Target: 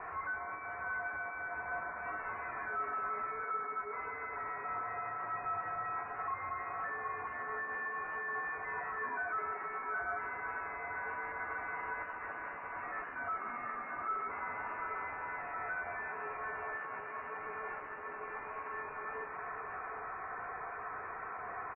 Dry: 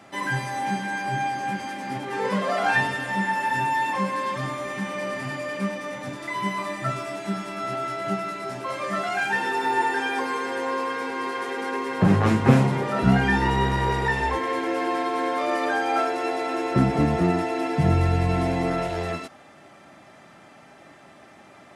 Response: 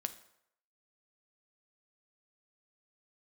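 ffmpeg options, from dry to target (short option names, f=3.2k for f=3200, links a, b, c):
-filter_complex "[0:a]acompressor=threshold=-35dB:ratio=12,crystalizer=i=10:c=0,aeval=exprs='(tanh(158*val(0)+0.6)-tanh(0.6))/158':c=same,highpass=f=1.8k:t=q:w=1.6,asplit=2[a][b];[b]adelay=15,volume=-12dB[c];[a][c]amix=inputs=2:normalize=0,aecho=1:1:737:0.473,asplit=2[d][e];[1:a]atrim=start_sample=2205,asetrate=48510,aresample=44100[f];[e][f]afir=irnorm=-1:irlink=0,volume=-14dB[g];[d][g]amix=inputs=2:normalize=0,lowpass=f=2.6k:t=q:w=0.5098,lowpass=f=2.6k:t=q:w=0.6013,lowpass=f=2.6k:t=q:w=0.9,lowpass=f=2.6k:t=q:w=2.563,afreqshift=-3100,volume=4.5dB" -ar 22050 -c:a libmp3lame -b:a 16k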